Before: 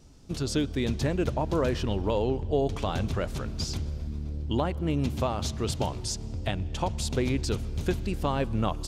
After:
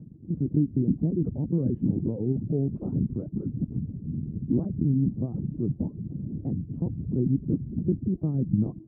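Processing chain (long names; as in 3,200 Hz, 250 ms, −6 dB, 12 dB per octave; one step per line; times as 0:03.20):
upward compression, threshold −39 dBFS
linear-prediction vocoder at 8 kHz pitch kept
flat-topped band-pass 200 Hz, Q 1.1
spectral tilt −3 dB per octave
four-comb reverb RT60 3.4 s, combs from 30 ms, DRR 19.5 dB
reverb reduction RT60 0.56 s
wow of a warped record 33 1/3 rpm, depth 160 cents
level +1.5 dB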